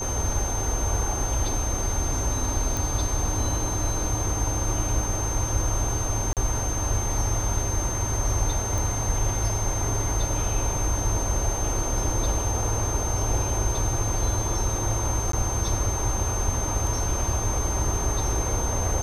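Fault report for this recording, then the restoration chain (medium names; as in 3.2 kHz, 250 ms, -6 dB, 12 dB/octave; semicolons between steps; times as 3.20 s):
whine 6.3 kHz -30 dBFS
2.77 s: pop
6.33–6.37 s: dropout 38 ms
8.78 s: pop
15.32–15.33 s: dropout 13 ms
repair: de-click; band-stop 6.3 kHz, Q 30; interpolate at 6.33 s, 38 ms; interpolate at 15.32 s, 13 ms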